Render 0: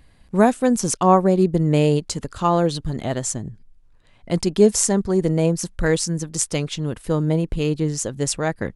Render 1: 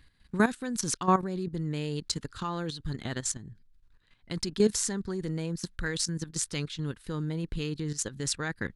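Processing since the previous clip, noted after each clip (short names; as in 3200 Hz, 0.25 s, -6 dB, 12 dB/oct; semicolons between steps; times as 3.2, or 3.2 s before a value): level quantiser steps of 13 dB; fifteen-band EQ 630 Hz -10 dB, 1600 Hz +7 dB, 4000 Hz +8 dB; gain -5 dB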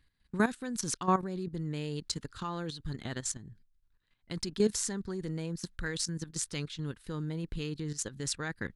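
gate -55 dBFS, range -7 dB; gain -3.5 dB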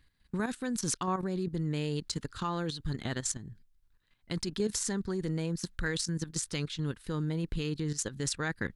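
limiter -24.5 dBFS, peak gain reduction 11 dB; gain +3.5 dB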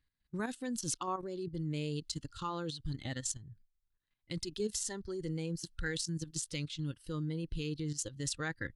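spectral noise reduction 11 dB; gain -3.5 dB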